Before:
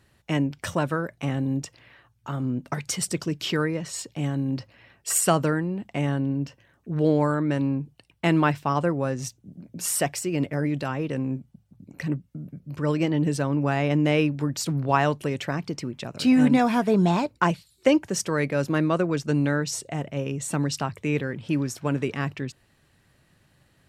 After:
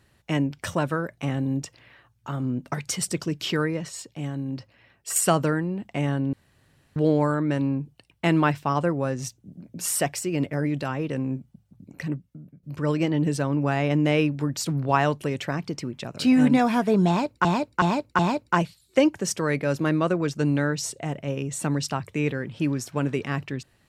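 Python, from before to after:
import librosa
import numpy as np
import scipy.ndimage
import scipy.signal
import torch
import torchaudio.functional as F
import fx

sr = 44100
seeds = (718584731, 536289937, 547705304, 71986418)

y = fx.edit(x, sr, fx.clip_gain(start_s=3.89, length_s=1.27, db=-4.0),
    fx.room_tone_fill(start_s=6.33, length_s=0.63),
    fx.fade_out_to(start_s=11.93, length_s=0.7, floor_db=-13.5),
    fx.repeat(start_s=17.08, length_s=0.37, count=4), tone=tone)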